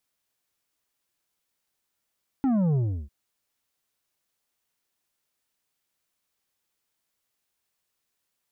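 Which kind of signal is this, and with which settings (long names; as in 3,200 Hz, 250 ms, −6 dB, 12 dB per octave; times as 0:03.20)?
bass drop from 280 Hz, over 0.65 s, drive 7.5 dB, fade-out 0.34 s, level −21 dB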